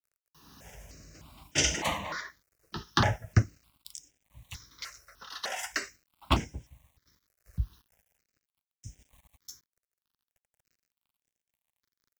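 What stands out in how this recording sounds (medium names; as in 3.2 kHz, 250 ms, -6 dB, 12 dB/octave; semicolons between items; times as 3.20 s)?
a quantiser's noise floor 10-bit, dither none; tremolo triangle 0.68 Hz, depth 60%; notches that jump at a steady rate 3.3 Hz 920–4200 Hz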